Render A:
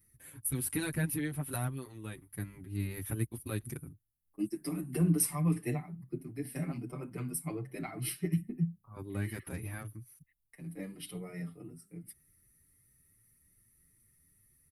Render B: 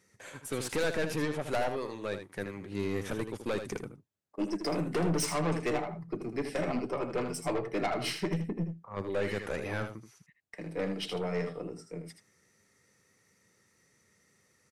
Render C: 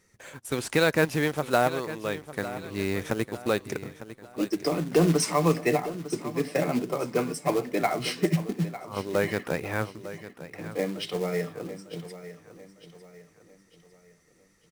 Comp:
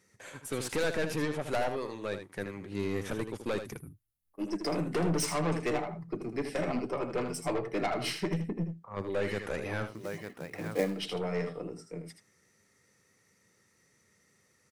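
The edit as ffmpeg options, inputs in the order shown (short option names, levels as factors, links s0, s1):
-filter_complex "[1:a]asplit=3[s0][s1][s2];[s0]atrim=end=3.84,asetpts=PTS-STARTPTS[s3];[0:a]atrim=start=3.6:end=4.54,asetpts=PTS-STARTPTS[s4];[s1]atrim=start=4.3:end=10.07,asetpts=PTS-STARTPTS[s5];[2:a]atrim=start=9.83:end=11.02,asetpts=PTS-STARTPTS[s6];[s2]atrim=start=10.78,asetpts=PTS-STARTPTS[s7];[s3][s4]acrossfade=d=0.24:c1=tri:c2=tri[s8];[s8][s5]acrossfade=d=0.24:c1=tri:c2=tri[s9];[s9][s6]acrossfade=d=0.24:c1=tri:c2=tri[s10];[s10][s7]acrossfade=d=0.24:c1=tri:c2=tri"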